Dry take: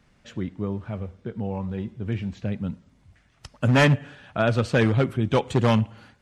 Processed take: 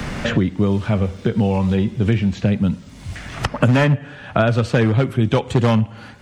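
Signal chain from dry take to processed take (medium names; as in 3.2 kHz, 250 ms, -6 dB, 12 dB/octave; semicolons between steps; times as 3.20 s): harmonic-percussive split percussive -3 dB; three bands compressed up and down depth 100%; trim +6.5 dB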